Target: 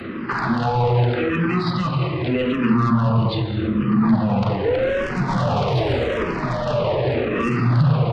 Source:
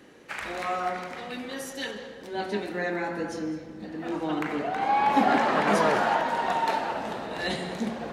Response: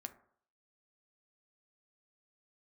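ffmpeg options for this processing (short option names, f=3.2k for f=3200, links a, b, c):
-filter_complex "[0:a]aresample=16000,aeval=exprs='clip(val(0),-1,0.141)':c=same,aresample=44100,asplit=2[a][b];[b]highpass=f=720:p=1,volume=22dB,asoftclip=type=tanh:threshold=-8dB[c];[a][c]amix=inputs=2:normalize=0,lowpass=f=6.2k:p=1,volume=-6dB,acrossover=split=160|1000|4000[d][e][f][g];[d]acompressor=threshold=-43dB:ratio=4[h];[e]acompressor=threshold=-28dB:ratio=4[i];[f]acompressor=threshold=-30dB:ratio=4[j];[g]acompressor=threshold=-34dB:ratio=4[k];[h][i][j][k]amix=inputs=4:normalize=0,asetrate=29433,aresample=44100,atempo=1.49831,equalizer=f=120:w=1.5:g=14.5,alimiter=limit=-22dB:level=0:latency=1:release=63,asplit=2[l][m];[1:a]atrim=start_sample=2205,lowshelf=f=260:g=10.5[n];[m][n]afir=irnorm=-1:irlink=0,volume=9dB[o];[l][o]amix=inputs=2:normalize=0,asplit=2[p][q];[q]afreqshift=-0.83[r];[p][r]amix=inputs=2:normalize=1,volume=1dB"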